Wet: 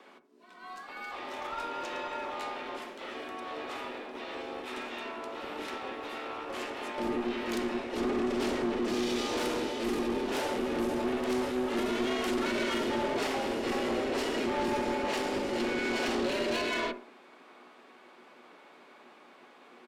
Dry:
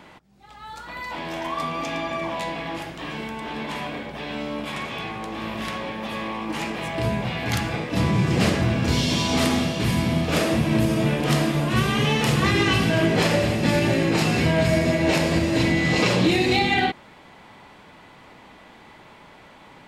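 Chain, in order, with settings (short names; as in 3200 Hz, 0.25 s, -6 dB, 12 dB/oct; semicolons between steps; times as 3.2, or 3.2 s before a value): on a send at -10.5 dB: bell 140 Hz +11.5 dB 0.61 oct + reverb RT60 0.60 s, pre-delay 4 ms; on the sum: frequency shift +230 Hz; tube stage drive 20 dB, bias 0.4; harmoniser -7 st -2 dB; gain -9 dB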